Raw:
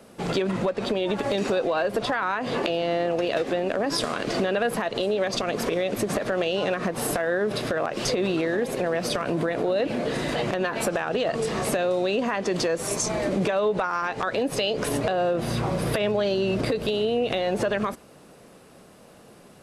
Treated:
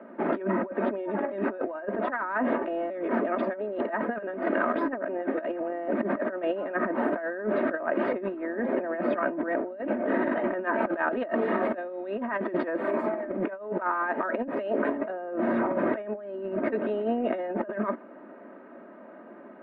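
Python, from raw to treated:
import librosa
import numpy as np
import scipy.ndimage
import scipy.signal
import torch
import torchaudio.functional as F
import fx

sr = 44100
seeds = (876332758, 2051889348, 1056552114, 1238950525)

y = fx.peak_eq(x, sr, hz=3900.0, db=6.5, octaves=0.77, at=(10.87, 12.9))
y = fx.edit(y, sr, fx.reverse_span(start_s=2.9, length_s=2.98), tone=tone)
y = scipy.signal.sosfilt(scipy.signal.ellip(3, 1.0, 50, [210.0, 1800.0], 'bandpass', fs=sr, output='sos'), y)
y = y + 0.64 * np.pad(y, (int(3.2 * sr / 1000.0), 0))[:len(y)]
y = fx.over_compress(y, sr, threshold_db=-28.0, ratio=-0.5)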